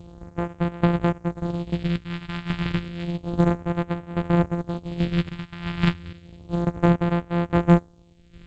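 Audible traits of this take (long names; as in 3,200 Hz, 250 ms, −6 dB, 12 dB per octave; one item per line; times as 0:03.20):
a buzz of ramps at a fixed pitch in blocks of 256 samples
chopped level 1.2 Hz, depth 65%, duty 35%
phaser sweep stages 2, 0.31 Hz, lowest notch 460–4,800 Hz
G.722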